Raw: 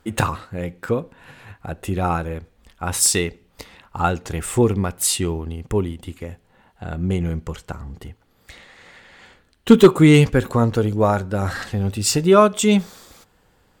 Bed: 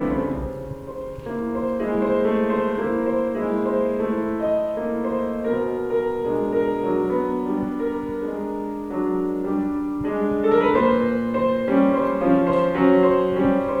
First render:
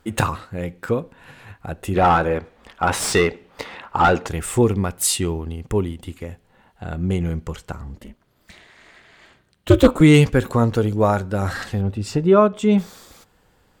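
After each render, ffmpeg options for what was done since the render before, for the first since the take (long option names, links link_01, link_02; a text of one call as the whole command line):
ffmpeg -i in.wav -filter_complex "[0:a]asplit=3[link_01][link_02][link_03];[link_01]afade=type=out:start_time=1.94:duration=0.02[link_04];[link_02]asplit=2[link_05][link_06];[link_06]highpass=frequency=720:poles=1,volume=22dB,asoftclip=type=tanh:threshold=-3dB[link_07];[link_05][link_07]amix=inputs=2:normalize=0,lowpass=frequency=1200:poles=1,volume=-6dB,afade=type=in:start_time=1.94:duration=0.02,afade=type=out:start_time=4.26:duration=0.02[link_08];[link_03]afade=type=in:start_time=4.26:duration=0.02[link_09];[link_04][link_08][link_09]amix=inputs=3:normalize=0,asettb=1/sr,asplit=3[link_10][link_11][link_12];[link_10]atrim=end=7.954[link_13];[link_11]atrim=start=7.95:end=10.01,asetpts=PTS-STARTPTS,afade=type=in:duration=0.004:curve=qsin,afade=type=out:start_time=2.056:duration=0.004:curve=qsin,aeval=exprs='val(0)*sin(2*PI*130*n/s)':channel_layout=same[link_14];[link_12]atrim=start=10.006[link_15];[link_13][link_14]acrossfade=duration=0.004:curve1=hsin:curve2=qsin[link_16];[link_16][link_15]acrossfade=duration=0.004:curve1=qsin:curve2=hsin,asettb=1/sr,asplit=3[link_17][link_18][link_19];[link_17]atrim=end=11.814[link_20];[link_18]atrim=start=11.81:end=12.78,asetpts=PTS-STARTPTS,afade=type=in:duration=0.004:curve=qsin,afade=type=out:start_time=0.966:duration=0.004:curve=qsin,lowpass=frequency=1100:poles=1[link_21];[link_19]atrim=start=12.776[link_22];[link_20][link_21]acrossfade=duration=0.004:curve1=hsin:curve2=qsin[link_23];[link_23][link_22]acrossfade=duration=0.004:curve1=qsin:curve2=hsin" out.wav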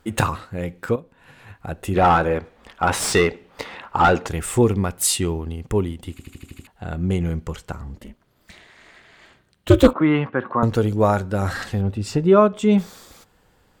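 ffmpeg -i in.wav -filter_complex "[0:a]asettb=1/sr,asplit=3[link_01][link_02][link_03];[link_01]atrim=end=9.934[link_04];[link_02]atrim=start=9.93:end=10.63,asetpts=PTS-STARTPTS,afade=type=in:duration=0.004:curve=qsin,afade=type=out:start_time=0.696:duration=0.004:curve=qsin,highpass=frequency=170:width=0.5412,highpass=frequency=170:width=1.3066,equalizer=frequency=170:width_type=q:width=4:gain=-10,equalizer=frequency=270:width_type=q:width=4:gain=-6,equalizer=frequency=440:width_type=q:width=4:gain=-9,equalizer=frequency=1100:width_type=q:width=4:gain=6,equalizer=frequency=2300:width_type=q:width=4:gain=-7,lowpass=frequency=2300:width=0.5412,lowpass=frequency=2300:width=1.3066[link_05];[link_03]atrim=start=10.626[link_06];[link_04][link_05]acrossfade=duration=0.004:curve1=hsin:curve2=qsin[link_07];[link_07][link_06]acrossfade=duration=0.004:curve1=qsin:curve2=hsin,asplit=9[link_08][link_09][link_10][link_11][link_12][link_13][link_14][link_15][link_16];[link_08]atrim=end=0.96,asetpts=PTS-STARTPTS,afade=type=out:start_time=0.956:duration=0.004:curve=hsin:silence=0.237137[link_17];[link_09]atrim=start=0.96:end=6.192,asetpts=PTS-STARTPTS,afade=type=in:duration=0.7:silence=0.237137[link_18];[link_10]atrim=start=6.108:end=6.192[link_19];[link_11]atrim=start=6.108:end=6.192[link_20];[link_12]atrim=start=6.108:end=6.192[link_21];[link_13]atrim=start=6.108:end=6.192[link_22];[link_14]atrim=start=6.108:end=6.192[link_23];[link_15]atrim=start=6.108:end=6.192[link_24];[link_16]atrim=start=6.668[link_25];[link_17][link_18]concat=n=2:v=0:a=1[link_26];[link_26][link_19]acrossfade=duration=0.004:curve1=hsin:curve2=hsin[link_27];[link_27][link_20]acrossfade=duration=0.004:curve1=hsin:curve2=hsin[link_28];[link_28][link_21]acrossfade=duration=0.004:curve1=hsin:curve2=hsin[link_29];[link_29][link_22]acrossfade=duration=0.004:curve1=hsin:curve2=hsin[link_30];[link_30][link_23]acrossfade=duration=0.004:curve1=hsin:curve2=hsin[link_31];[link_31][link_24]acrossfade=duration=0.004:curve1=hsin:curve2=hsin[link_32];[link_32][link_25]acrossfade=duration=0.004:curve1=hsin:curve2=hsin" out.wav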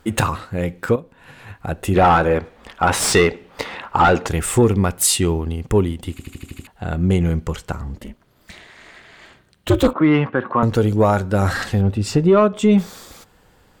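ffmpeg -i in.wav -af "acontrast=29,alimiter=limit=-6dB:level=0:latency=1:release=261" out.wav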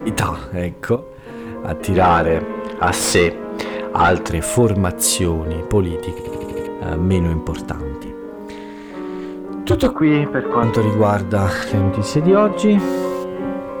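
ffmpeg -i in.wav -i bed.wav -filter_complex "[1:a]volume=-5dB[link_01];[0:a][link_01]amix=inputs=2:normalize=0" out.wav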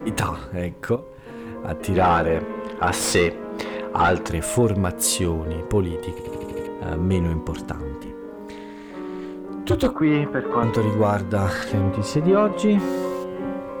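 ffmpeg -i in.wav -af "volume=-4.5dB" out.wav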